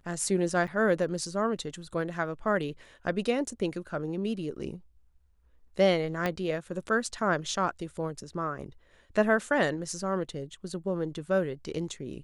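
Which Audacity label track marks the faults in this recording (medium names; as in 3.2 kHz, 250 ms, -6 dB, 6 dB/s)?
0.670000	0.680000	dropout 7.4 ms
6.260000	6.260000	pop -15 dBFS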